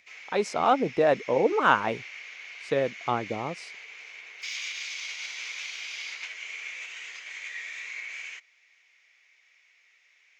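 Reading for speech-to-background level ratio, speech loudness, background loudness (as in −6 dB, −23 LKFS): 11.5 dB, −26.0 LKFS, −37.5 LKFS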